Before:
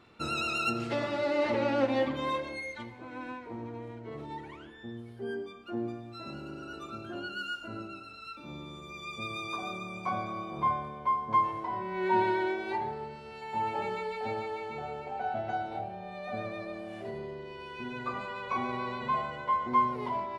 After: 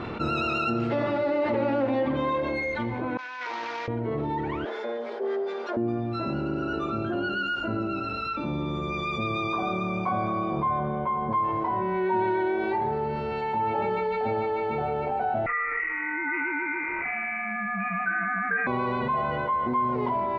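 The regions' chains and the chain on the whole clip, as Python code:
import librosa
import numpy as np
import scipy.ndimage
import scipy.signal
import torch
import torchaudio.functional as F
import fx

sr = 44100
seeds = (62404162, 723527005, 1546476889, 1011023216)

y = fx.chain(x, sr, fx.cvsd(bps=32000),
    fx.cheby1_highpass(hz=1700.0, order=2),
    fx.over_compress(threshold_db=-56.0, ratio=-0.5), at=(3.17, 3.88))
y = fx.chain(y, sr, fx.lower_of_two(delay_ms=4.8),
    fx.cabinet(low_hz=380.0, low_slope=24, high_hz=7300.0, hz=(530.0, 1200.0, 2000.0, 2800.0), db=(6, -3, -3, -7)), at=(4.65, 5.77))
y = fx.chain(y, sr, fx.air_absorb(metres=230.0),
    fx.comb(ms=5.3, depth=0.54), at=(10.79, 11.31))
y = fx.chain(y, sr, fx.highpass(hz=580.0, slope=6),
    fx.peak_eq(hz=1300.0, db=10.5, octaves=0.5),
    fx.freq_invert(carrier_hz=2700), at=(15.46, 18.67))
y = scipy.signal.sosfilt(scipy.signal.butter(2, 4500.0, 'lowpass', fs=sr, output='sos'), y)
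y = fx.high_shelf(y, sr, hz=2200.0, db=-11.5)
y = fx.env_flatten(y, sr, amount_pct=70)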